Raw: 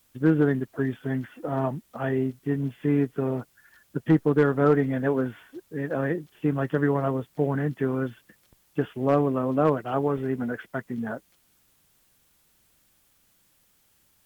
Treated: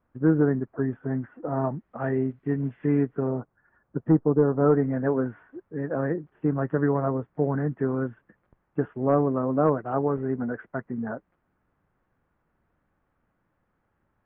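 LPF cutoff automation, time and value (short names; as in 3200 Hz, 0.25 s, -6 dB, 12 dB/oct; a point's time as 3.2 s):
LPF 24 dB/oct
1.45 s 1500 Hz
2.34 s 2100 Hz
2.97 s 2100 Hz
3.39 s 1300 Hz
4.09 s 1300 Hz
4.42 s 1000 Hz
4.87 s 1600 Hz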